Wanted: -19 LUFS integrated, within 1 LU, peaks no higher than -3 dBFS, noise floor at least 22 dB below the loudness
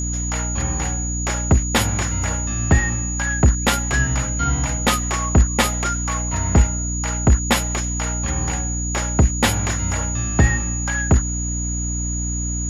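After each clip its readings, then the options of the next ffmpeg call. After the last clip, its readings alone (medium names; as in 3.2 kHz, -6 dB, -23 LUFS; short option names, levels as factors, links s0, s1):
hum 60 Hz; highest harmonic 300 Hz; hum level -22 dBFS; steady tone 6.8 kHz; tone level -26 dBFS; loudness -20.0 LUFS; peak level -3.0 dBFS; loudness target -19.0 LUFS
-> -af "bandreject=f=60:t=h:w=6,bandreject=f=120:t=h:w=6,bandreject=f=180:t=h:w=6,bandreject=f=240:t=h:w=6,bandreject=f=300:t=h:w=6"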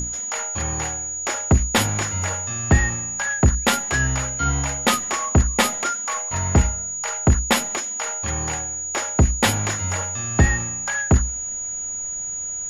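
hum not found; steady tone 6.8 kHz; tone level -26 dBFS
-> -af "bandreject=f=6800:w=30"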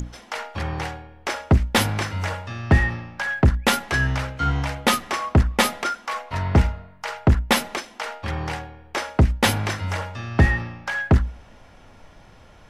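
steady tone not found; loudness -23.0 LUFS; peak level -5.5 dBFS; loudness target -19.0 LUFS
-> -af "volume=1.58,alimiter=limit=0.708:level=0:latency=1"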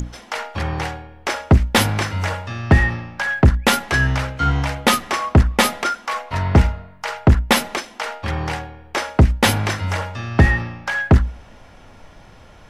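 loudness -19.5 LUFS; peak level -3.0 dBFS; noise floor -45 dBFS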